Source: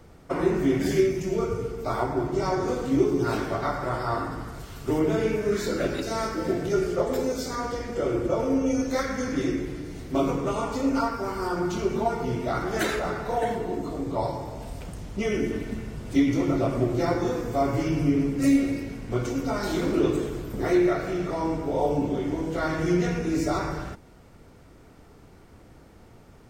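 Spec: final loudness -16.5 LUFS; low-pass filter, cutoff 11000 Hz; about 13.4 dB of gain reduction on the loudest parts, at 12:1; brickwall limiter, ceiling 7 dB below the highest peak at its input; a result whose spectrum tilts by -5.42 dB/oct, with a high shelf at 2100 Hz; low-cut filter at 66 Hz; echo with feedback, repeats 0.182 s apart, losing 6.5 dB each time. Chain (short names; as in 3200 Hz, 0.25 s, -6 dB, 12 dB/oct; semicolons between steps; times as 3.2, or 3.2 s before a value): HPF 66 Hz; LPF 11000 Hz; high shelf 2100 Hz -8.5 dB; compressor 12:1, threshold -30 dBFS; limiter -27 dBFS; feedback echo 0.182 s, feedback 47%, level -6.5 dB; gain +18.5 dB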